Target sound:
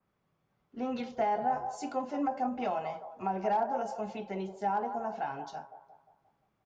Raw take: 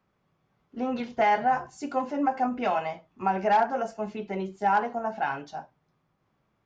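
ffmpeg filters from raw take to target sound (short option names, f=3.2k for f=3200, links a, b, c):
-filter_complex "[0:a]acrossover=split=440|970[a][b][c];[b]aecho=1:1:176|352|528|704|880|1056:0.501|0.231|0.106|0.0488|0.0224|0.0103[d];[c]acompressor=threshold=-41dB:ratio=10[e];[a][d][e]amix=inputs=3:normalize=0,adynamicequalizer=threshold=0.00708:dfrequency=2600:dqfactor=0.7:tfrequency=2600:tqfactor=0.7:attack=5:release=100:ratio=0.375:range=3:mode=boostabove:tftype=highshelf,volume=-5dB"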